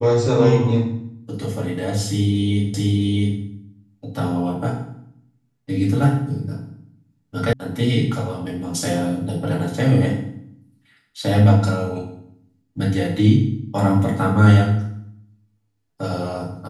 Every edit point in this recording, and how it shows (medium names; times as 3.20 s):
2.74 s: repeat of the last 0.66 s
7.53 s: sound stops dead